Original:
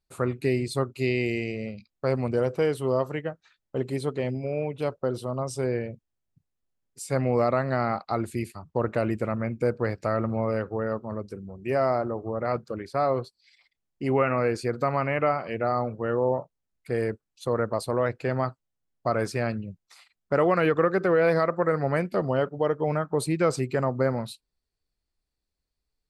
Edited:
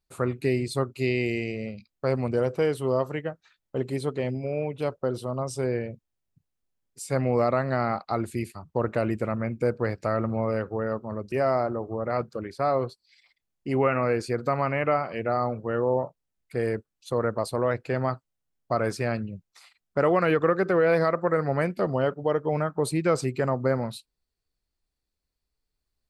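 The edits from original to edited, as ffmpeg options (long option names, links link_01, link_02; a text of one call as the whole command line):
ffmpeg -i in.wav -filter_complex "[0:a]asplit=2[link_01][link_02];[link_01]atrim=end=11.322[link_03];[link_02]atrim=start=11.668[link_04];[link_03][link_04]acrossfade=duration=0.004:curve1=hsin:curve2=hsin" out.wav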